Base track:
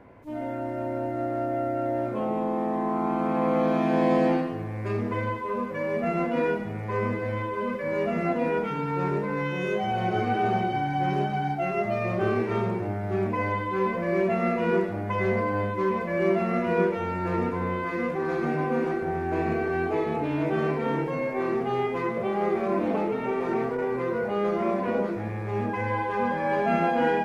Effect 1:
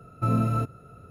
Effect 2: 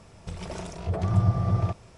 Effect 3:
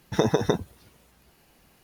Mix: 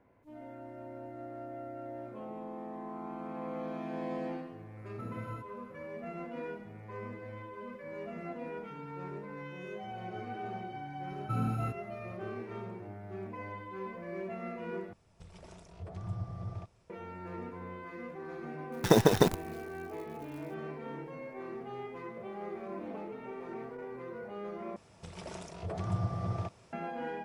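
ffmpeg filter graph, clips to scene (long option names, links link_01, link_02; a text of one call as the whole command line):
ffmpeg -i bed.wav -i cue0.wav -i cue1.wav -i cue2.wav -filter_complex "[1:a]asplit=2[link_01][link_02];[2:a]asplit=2[link_03][link_04];[0:a]volume=-15.5dB[link_05];[link_01]alimiter=limit=-21dB:level=0:latency=1:release=445[link_06];[link_02]equalizer=frequency=650:width_type=o:width=0.67:gain=-9[link_07];[3:a]acrusher=bits=6:dc=4:mix=0:aa=0.000001[link_08];[link_04]highpass=frequency=160:poles=1[link_09];[link_05]asplit=3[link_10][link_11][link_12];[link_10]atrim=end=14.934[link_13];[link_03]atrim=end=1.97,asetpts=PTS-STARTPTS,volume=-16dB[link_14];[link_11]atrim=start=16.896:end=24.764[link_15];[link_09]atrim=end=1.97,asetpts=PTS-STARTPTS,volume=-6dB[link_16];[link_12]atrim=start=26.726[link_17];[link_06]atrim=end=1.1,asetpts=PTS-STARTPTS,volume=-13.5dB,afade=type=in:duration=0.004:curve=hsin,afade=type=out:start_time=1.096:duration=0.004:curve=hsin,adelay=210357S[link_18];[link_07]atrim=end=1.1,asetpts=PTS-STARTPTS,volume=-8.5dB,afade=type=in:duration=0.004:curve=hsin,afade=type=out:start_time=1.096:duration=0.004:curve=hsin,adelay=11070[link_19];[link_08]atrim=end=1.83,asetpts=PTS-STARTPTS,volume=-0.5dB,afade=type=in:duration=0.004:curve=hsin,afade=type=out:start_time=1.826:duration=0.004:curve=hsin,adelay=18720[link_20];[link_13][link_14]acrossfade=duration=0.004:curve1=hsin:curve2=hsin[link_21];[link_21][link_15]acrossfade=duration=0.004:curve1=hsin:curve2=hsin[link_22];[link_22][link_16]acrossfade=duration=0.004:curve1=hsin:curve2=hsin[link_23];[link_23][link_17]acrossfade=duration=0.004:curve1=hsin:curve2=hsin[link_24];[link_24][link_18][link_19][link_20]amix=inputs=4:normalize=0" out.wav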